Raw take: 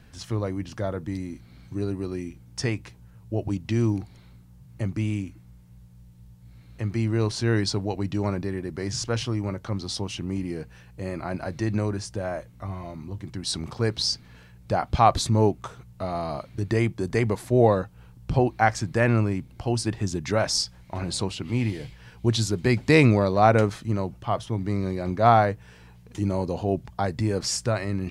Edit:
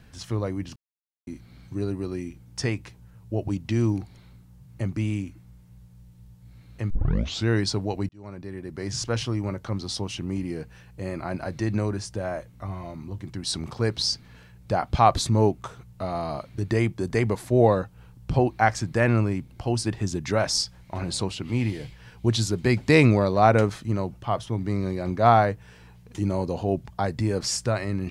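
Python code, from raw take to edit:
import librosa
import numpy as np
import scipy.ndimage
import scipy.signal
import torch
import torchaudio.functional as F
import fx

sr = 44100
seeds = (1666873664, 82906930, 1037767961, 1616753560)

y = fx.edit(x, sr, fx.silence(start_s=0.76, length_s=0.51),
    fx.tape_start(start_s=6.9, length_s=0.57),
    fx.fade_in_span(start_s=8.09, length_s=0.92), tone=tone)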